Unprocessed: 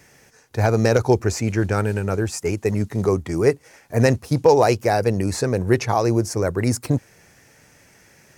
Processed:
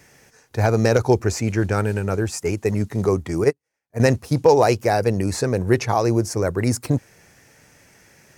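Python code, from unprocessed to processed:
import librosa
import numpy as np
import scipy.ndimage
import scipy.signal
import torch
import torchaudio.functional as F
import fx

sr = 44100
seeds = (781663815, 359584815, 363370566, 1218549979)

y = fx.upward_expand(x, sr, threshold_db=-33.0, expansion=2.5, at=(3.44, 4.0))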